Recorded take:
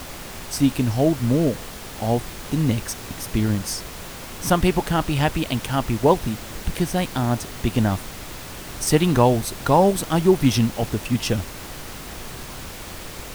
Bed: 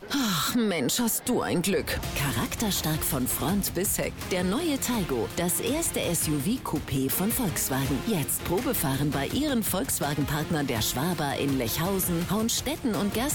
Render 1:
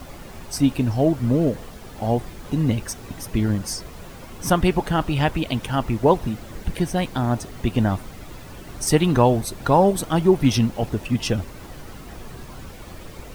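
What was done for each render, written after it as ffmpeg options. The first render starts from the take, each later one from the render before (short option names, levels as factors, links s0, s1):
-af "afftdn=nr=10:nf=-36"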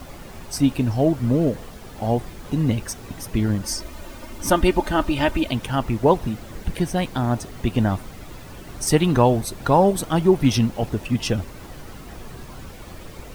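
-filter_complex "[0:a]asettb=1/sr,asplit=3[s0][s1][s2];[s0]atrim=end=3.634[s3];[s1]atrim=start=3.63:end=5.51,asetpts=PTS-STARTPTS,afade=t=in:d=0.004:c=qsin,afade=t=out:st=1.876:d=0.004:c=qsin,aecho=1:1:3.3:0.68,atrim=end_sample=82908[s4];[s2]atrim=start=5.506[s5];[s3][s4]acrossfade=d=0.004:c1=hsin:c2=qsin[s6];[s6][s5]acrossfade=d=0.004:c1=qsin:c2=hsin"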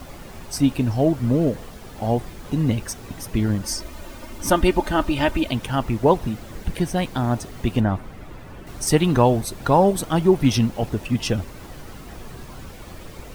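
-filter_complex "[0:a]asettb=1/sr,asplit=3[s0][s1][s2];[s0]atrim=end=7.804[s3];[s1]atrim=start=7.8:end=8.67,asetpts=PTS-STARTPTS,afade=t=in:d=0.004:c=qsin,afade=t=out:st=0.866:d=0.004:c=qsin,acrossover=split=2700[s4][s5];[s5]acompressor=threshold=0.00141:ratio=4:attack=1:release=60[s6];[s4][s6]amix=inputs=2:normalize=0[s7];[s2]atrim=start=8.666[s8];[s3][s7]acrossfade=d=0.004:c1=hsin:c2=qsin[s9];[s9][s8]acrossfade=d=0.004:c1=qsin:c2=hsin"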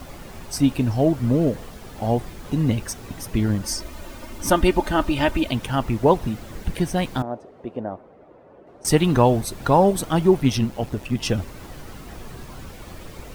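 -filter_complex "[0:a]asettb=1/sr,asplit=3[s0][s1][s2];[s0]atrim=end=7.224[s3];[s1]atrim=start=7.22:end=8.85,asetpts=PTS-STARTPTS,afade=t=in:d=0.004:c=qsin,afade=t=out:st=1.626:d=0.004:c=qsin,bandpass=f=530:t=q:w=1.9[s4];[s2]atrim=start=8.846[s5];[s3][s4]acrossfade=d=0.004:c1=hsin:c2=qsin[s6];[s6][s5]acrossfade=d=0.004:c1=qsin:c2=hsin,asettb=1/sr,asplit=3[s7][s8][s9];[s7]atrim=end=10.404[s10];[s8]atrim=start=10.4:end=11.23,asetpts=PTS-STARTPTS,afade=t=in:d=0.004:c=qsin,afade=t=out:st=0.826:d=0.004:c=qsin,tremolo=f=130:d=0.519[s11];[s9]atrim=start=11.226[s12];[s10][s11]acrossfade=d=0.004:c1=hsin:c2=qsin[s13];[s13][s12]acrossfade=d=0.004:c1=qsin:c2=hsin"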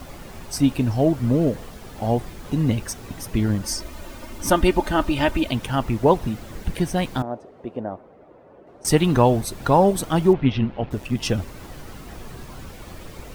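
-filter_complex "[0:a]asettb=1/sr,asplit=3[s0][s1][s2];[s0]atrim=end=10.334[s3];[s1]atrim=start=10.33:end=10.91,asetpts=PTS-STARTPTS,afade=t=in:d=0.004:c=qsin,afade=t=out:st=0.576:d=0.004:c=qsin,lowpass=f=3300:w=0.5412,lowpass=f=3300:w=1.3066[s4];[s2]atrim=start=10.906[s5];[s3][s4]acrossfade=d=0.004:c1=hsin:c2=qsin[s6];[s6][s5]acrossfade=d=0.004:c1=qsin:c2=hsin"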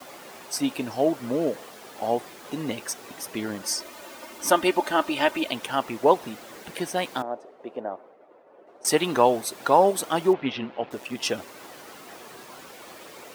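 -af "agate=range=0.0224:threshold=0.00562:ratio=3:detection=peak,highpass=400"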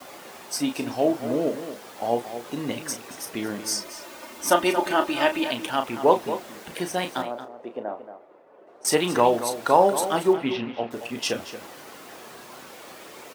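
-filter_complex "[0:a]asplit=2[s0][s1];[s1]adelay=34,volume=0.376[s2];[s0][s2]amix=inputs=2:normalize=0,asplit=2[s3][s4];[s4]adelay=227.4,volume=0.282,highshelf=f=4000:g=-5.12[s5];[s3][s5]amix=inputs=2:normalize=0"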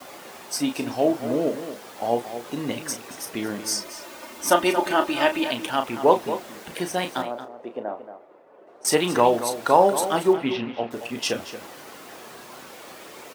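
-af "volume=1.12"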